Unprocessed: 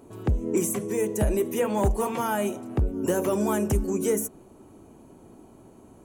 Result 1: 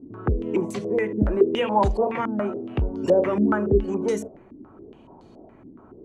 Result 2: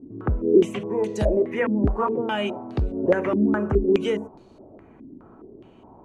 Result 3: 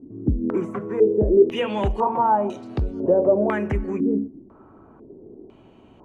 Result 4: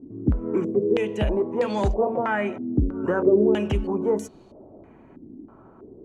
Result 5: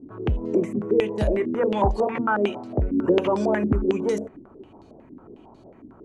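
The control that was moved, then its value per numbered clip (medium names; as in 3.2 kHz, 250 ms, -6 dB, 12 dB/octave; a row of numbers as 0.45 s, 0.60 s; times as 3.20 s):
step-sequenced low-pass, rate: 7.1 Hz, 4.8 Hz, 2 Hz, 3.1 Hz, 11 Hz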